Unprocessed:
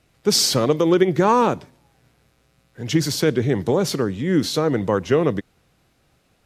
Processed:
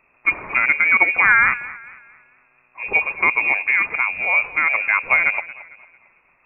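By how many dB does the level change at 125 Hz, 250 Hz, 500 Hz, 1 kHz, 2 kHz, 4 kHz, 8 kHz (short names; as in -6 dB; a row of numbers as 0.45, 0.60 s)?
under -20 dB, -20.5 dB, -16.0 dB, +0.5 dB, +18.5 dB, under -20 dB, under -40 dB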